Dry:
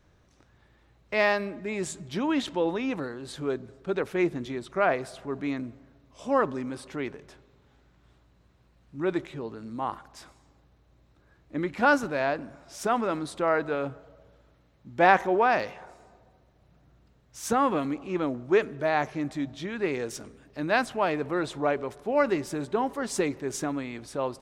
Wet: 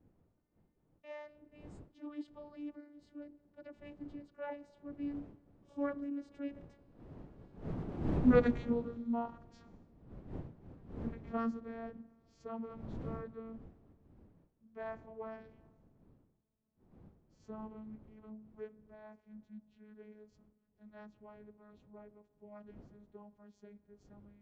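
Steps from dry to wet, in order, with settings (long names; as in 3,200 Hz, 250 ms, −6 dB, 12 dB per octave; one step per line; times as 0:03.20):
vocoder with a gliding carrier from C#4, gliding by −4 semitones
wind on the microphone 250 Hz −39 dBFS
source passing by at 0:08.24, 28 m/s, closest 5.9 metres
level +9 dB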